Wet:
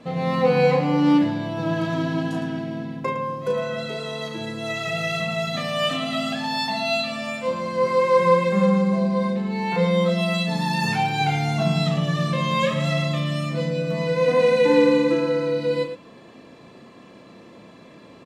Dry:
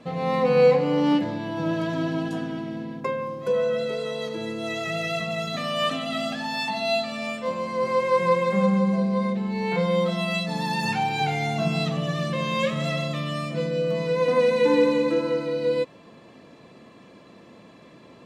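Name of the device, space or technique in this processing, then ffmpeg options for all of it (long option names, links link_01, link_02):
slapback doubling: -filter_complex "[0:a]asplit=3[link_01][link_02][link_03];[link_02]adelay=35,volume=-6dB[link_04];[link_03]adelay=110,volume=-10dB[link_05];[link_01][link_04][link_05]amix=inputs=3:normalize=0,volume=1.5dB"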